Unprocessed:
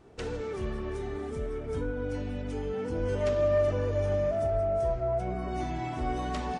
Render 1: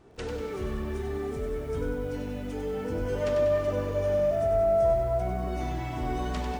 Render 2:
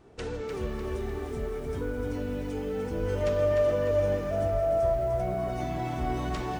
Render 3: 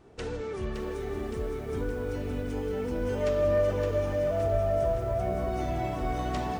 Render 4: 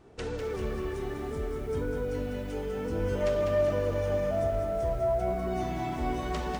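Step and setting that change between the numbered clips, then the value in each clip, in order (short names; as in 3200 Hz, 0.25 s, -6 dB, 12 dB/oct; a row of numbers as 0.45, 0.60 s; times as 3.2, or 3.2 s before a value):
lo-fi delay, time: 96, 300, 566, 199 ms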